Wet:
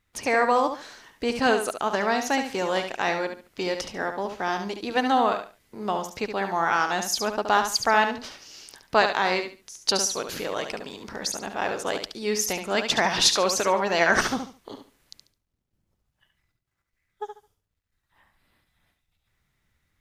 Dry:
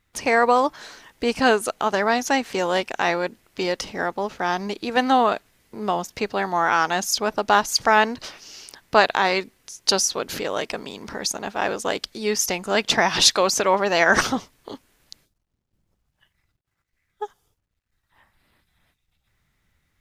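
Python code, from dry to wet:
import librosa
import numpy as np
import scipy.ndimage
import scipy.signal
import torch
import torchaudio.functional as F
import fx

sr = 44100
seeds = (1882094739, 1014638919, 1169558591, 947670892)

y = fx.echo_feedback(x, sr, ms=71, feedback_pct=24, wet_db=-7.5)
y = F.gain(torch.from_numpy(y), -4.0).numpy()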